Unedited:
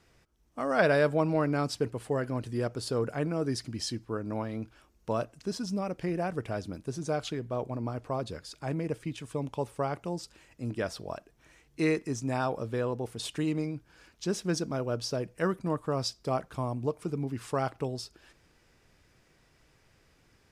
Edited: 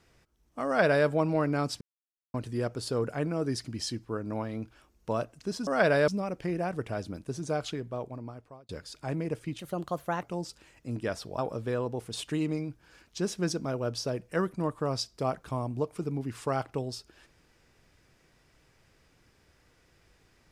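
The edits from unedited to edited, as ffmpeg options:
-filter_complex "[0:a]asplit=9[s0][s1][s2][s3][s4][s5][s6][s7][s8];[s0]atrim=end=1.81,asetpts=PTS-STARTPTS,afade=t=out:st=1.806:d=0.004:c=hsin[s9];[s1]atrim=start=1.81:end=2.34,asetpts=PTS-STARTPTS,volume=0[s10];[s2]atrim=start=2.34:end=5.672,asetpts=PTS-STARTPTS,afade=t=in:d=0.004:c=hsin[s11];[s3]atrim=start=0.658:end=1.072[s12];[s4]atrim=start=5.668:end=8.28,asetpts=PTS-STARTPTS,afade=t=out:st=1.612:d=1[s13];[s5]atrim=start=8.28:end=9.184,asetpts=PTS-STARTPTS,afade=t=in:d=0.004:c=hsin[s14];[s6]atrim=start=9.18:end=9.97,asetpts=PTS-STARTPTS,asetrate=54684,aresample=44100[s15];[s7]atrim=start=9.966:end=11.132[s16];[s8]atrim=start=12.448[s17];[s9][s10][s11]concat=n=3:v=0:a=1[s18];[s18][s12]acrossfade=d=0.004:c1=hsin:c2=hsin[s19];[s13][s14]concat=n=2:v=0:a=1[s20];[s19][s20]acrossfade=d=0.004:c1=hsin:c2=hsin[s21];[s21][s15]acrossfade=d=0.004:c1=hsin:c2=hsin[s22];[s22][s16]acrossfade=d=0.004:c1=hsin:c2=hsin[s23];[s23][s17]acrossfade=d=0.004:c1=hsin:c2=hsin"

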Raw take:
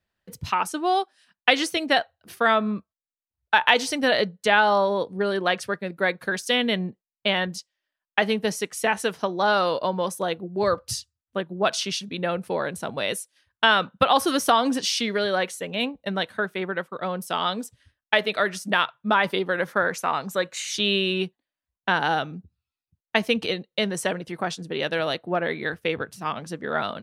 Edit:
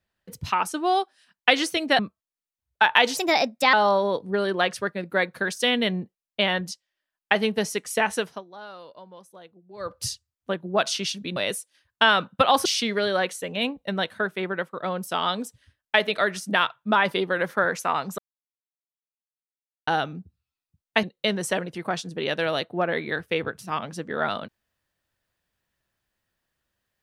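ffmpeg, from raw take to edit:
-filter_complex "[0:a]asplit=11[s0][s1][s2][s3][s4][s5][s6][s7][s8][s9][s10];[s0]atrim=end=1.992[s11];[s1]atrim=start=2.708:end=3.894[s12];[s2]atrim=start=3.89:end=4.6,asetpts=PTS-STARTPTS,asetrate=55566,aresample=44100[s13];[s3]atrim=start=4.596:end=9.31,asetpts=PTS-STARTPTS,afade=t=out:st=4.434:d=0.28:silence=0.0944061[s14];[s4]atrim=start=9.31:end=10.64,asetpts=PTS-STARTPTS,volume=0.0944[s15];[s5]atrim=start=10.64:end=12.232,asetpts=PTS-STARTPTS,afade=t=in:d=0.28:silence=0.0944061[s16];[s6]atrim=start=12.978:end=14.272[s17];[s7]atrim=start=14.838:end=20.37,asetpts=PTS-STARTPTS,afade=t=out:st=5.528:d=0.004:c=hsin[s18];[s8]atrim=start=20.37:end=22.06,asetpts=PTS-STARTPTS,volume=0[s19];[s9]atrim=start=22.06:end=23.222,asetpts=PTS-STARTPTS,afade=t=in:d=0.004:c=hsin[s20];[s10]atrim=start=23.568[s21];[s11][s12]acrossfade=d=0.004:c1=hsin:c2=hsin[s22];[s22][s13]acrossfade=d=0.004:c1=hsin:c2=hsin[s23];[s14][s15][s16]concat=n=3:v=0:a=1[s24];[s23][s24]acrossfade=d=0.004:c1=hsin:c2=hsin[s25];[s25][s17]acrossfade=d=0.004:c1=hsin:c2=hsin[s26];[s18][s19][s20]concat=n=3:v=0:a=1[s27];[s26][s27]acrossfade=d=0.004:c1=hsin:c2=hsin[s28];[s28][s21]acrossfade=d=0.004:c1=hsin:c2=hsin"

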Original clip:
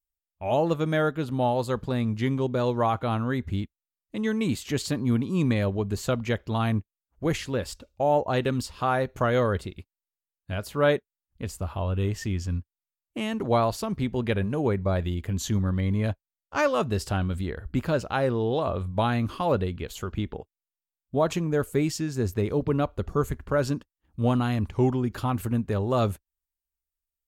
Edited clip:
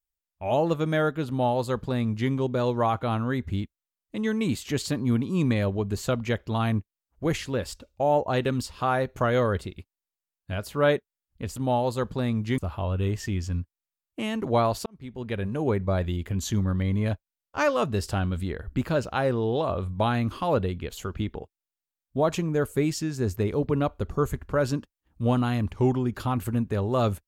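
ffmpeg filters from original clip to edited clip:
-filter_complex "[0:a]asplit=4[s0][s1][s2][s3];[s0]atrim=end=11.562[s4];[s1]atrim=start=1.278:end=2.302[s5];[s2]atrim=start=11.558:end=13.84,asetpts=PTS-STARTPTS,afade=t=out:st=2.278:d=0.004:c=hsin[s6];[s3]atrim=start=13.84,asetpts=PTS-STARTPTS,afade=t=in:d=0.82[s7];[s4][s5]acrossfade=d=0.004:c1=hsin:c2=hsin[s8];[s6][s7]concat=n=2:v=0:a=1[s9];[s8][s9]acrossfade=d=0.004:c1=hsin:c2=hsin"

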